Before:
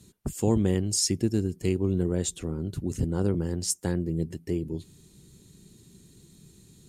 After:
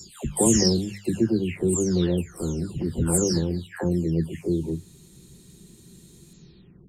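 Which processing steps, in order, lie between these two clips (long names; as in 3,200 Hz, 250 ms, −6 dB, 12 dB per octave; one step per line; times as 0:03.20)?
every frequency bin delayed by itself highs early, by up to 555 ms
mains-hum notches 50/100/150/200 Hz
level +5.5 dB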